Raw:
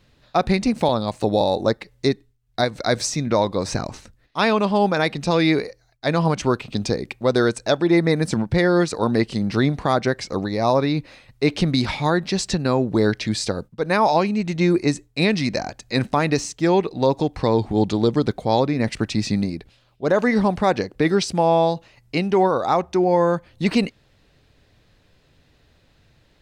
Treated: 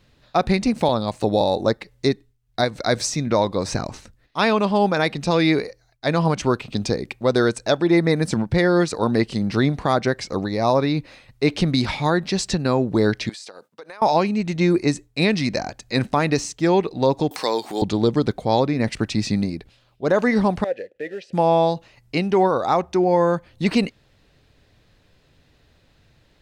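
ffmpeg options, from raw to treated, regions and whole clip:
-filter_complex "[0:a]asettb=1/sr,asplit=3[a][b][c];[a]atrim=end=13.294[d];[b]atrim=start=13.29:end=14.02,asetpts=PTS-STARTPTS,afade=t=in:d=0.004:c=qsin,afade=t=out:st=0.726:d=0.004:c=qsin,highpass=560,acompressor=threshold=-35dB:ratio=10:attack=3.2:release=140:knee=1:detection=peak[e];[c]atrim=start=14.016[f];[d][e]acrossfade=d=0.004:c1=hsin:c2=qsin[g];[g][f]acrossfade=d=0.004:c1=qsin:c2=hsin,asettb=1/sr,asplit=3[h][i][j];[h]atrim=end=17.314[k];[i]atrim=start=17.31:end=17.82,asetpts=PTS-STARTPTS,afade=t=in:d=0.004:c=qsin,afade=t=out:st=0.506:d=0.004:c=qsin,highpass=260,aemphasis=mode=production:type=riaa,acompressor=mode=upward:threshold=-25dB:ratio=2.5:attack=3.2:release=140:knee=2.83:detection=peak[l];[j]atrim=start=17.816[m];[k][l]acrossfade=d=0.004:c1=hsin:c2=qsin[n];[n][m]acrossfade=d=0.004:c1=qsin:c2=hsin,asettb=1/sr,asplit=3[o][p][q];[o]atrim=end=20.644[r];[p]atrim=start=20.64:end=21.33,asetpts=PTS-STARTPTS,afade=t=in:d=0.004:c=qsin,afade=t=out:st=0.686:d=0.004:c=qsin,equalizer=f=67:w=0.68:g=5,acrusher=bits=4:mode=log:mix=0:aa=0.000001,asplit=3[s][t][u];[s]bandpass=f=530:t=q:w=8,volume=0dB[v];[t]bandpass=f=1.84k:t=q:w=8,volume=-6dB[w];[u]bandpass=f=2.48k:t=q:w=8,volume=-9dB[x];[v][w][x]amix=inputs=3:normalize=0[y];[q]atrim=start=21.326[z];[r][y]acrossfade=d=0.004:c1=hsin:c2=qsin[aa];[aa][z]acrossfade=d=0.004:c1=qsin:c2=hsin"

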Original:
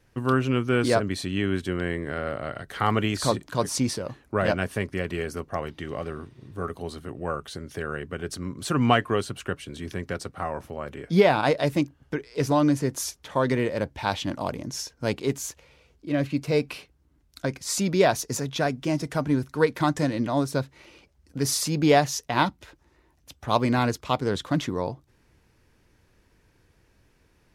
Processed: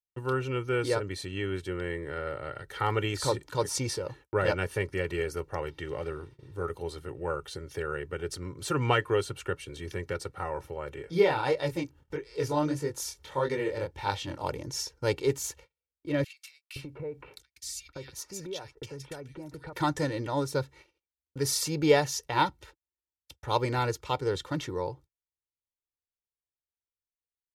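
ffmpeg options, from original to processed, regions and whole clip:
-filter_complex "[0:a]asettb=1/sr,asplit=3[a][b][c];[a]atrim=end=11.024[d];[b]atrim=start=11.02:end=14.44,asetpts=PTS-STARTPTS,afade=t=in:d=0.004:c=qsin,afade=t=out:st=3.416:d=0.004:c=qsin,acompressor=mode=upward:threshold=-36dB:ratio=2.5:attack=3.2:release=140:knee=2.83:detection=peak,flanger=delay=19.5:depth=7.5:speed=1.6[e];[c]atrim=start=14.436[f];[d][e]acrossfade=d=0.004:c1=hsin:c2=qsin[g];[g][f]acrossfade=d=0.004:c1=qsin:c2=hsin,asettb=1/sr,asplit=3[h][i][j];[h]atrim=end=16.244[k];[i]atrim=start=16.24:end=19.73,asetpts=PTS-STARTPTS,afade=t=in:d=0.004:c=qsin,afade=t=out:st=3.486:d=0.004:c=qsin,acompressor=threshold=-33dB:ratio=12:attack=3.2:release=140:knee=1:detection=peak,acrossover=split=1900[l][m];[l]adelay=520[n];[n][m]amix=inputs=2:normalize=0,atrim=end_sample=153909[o];[j]atrim=start=19.726[p];[k][o]acrossfade=d=0.004:c1=hsin:c2=qsin[q];[q][p]acrossfade=d=0.004:c1=qsin:c2=hsin,aecho=1:1:2.2:0.77,dynaudnorm=f=200:g=31:m=5.5dB,agate=range=-41dB:threshold=-42dB:ratio=16:detection=peak,volume=-8dB"

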